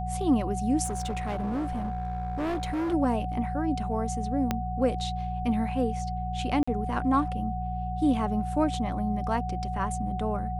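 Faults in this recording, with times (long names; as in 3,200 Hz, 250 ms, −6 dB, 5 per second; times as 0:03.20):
mains hum 60 Hz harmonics 3 −33 dBFS
whistle 740 Hz −33 dBFS
0:00.84–0:02.94: clipping −26.5 dBFS
0:04.51: click −12 dBFS
0:06.63–0:06.67: drop-out 45 ms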